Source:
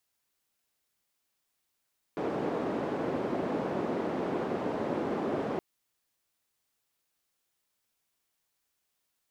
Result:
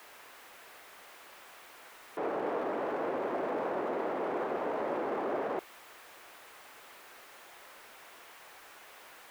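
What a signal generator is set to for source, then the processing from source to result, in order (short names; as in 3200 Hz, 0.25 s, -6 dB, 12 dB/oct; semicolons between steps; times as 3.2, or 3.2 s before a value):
noise band 240–440 Hz, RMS -32 dBFS 3.42 s
zero-crossing step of -37 dBFS; three-band isolator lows -17 dB, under 360 Hz, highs -16 dB, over 2500 Hz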